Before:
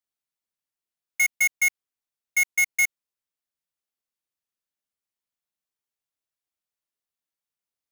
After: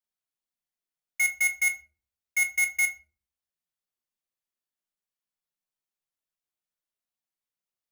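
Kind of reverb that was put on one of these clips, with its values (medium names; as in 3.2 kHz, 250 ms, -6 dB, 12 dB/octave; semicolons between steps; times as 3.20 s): simulated room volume 210 m³, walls furnished, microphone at 0.99 m; trim -4.5 dB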